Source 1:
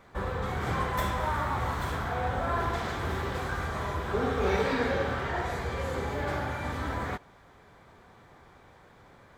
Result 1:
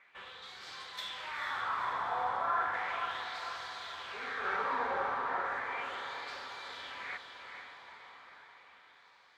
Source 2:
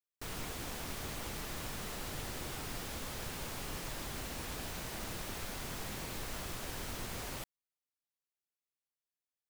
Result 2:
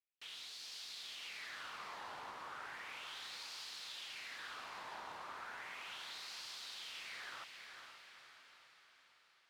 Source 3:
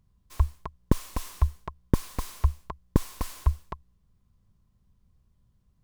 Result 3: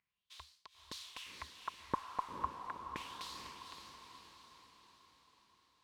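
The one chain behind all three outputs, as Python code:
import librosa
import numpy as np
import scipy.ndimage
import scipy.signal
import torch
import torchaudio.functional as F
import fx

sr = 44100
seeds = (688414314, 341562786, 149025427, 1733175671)

y = fx.filter_lfo_bandpass(x, sr, shape='sine', hz=0.35, low_hz=950.0, high_hz=4500.0, q=3.4)
y = fx.echo_diffused(y, sr, ms=474, feedback_pct=56, wet_db=-6.0)
y = y * librosa.db_to_amplitude(4.0)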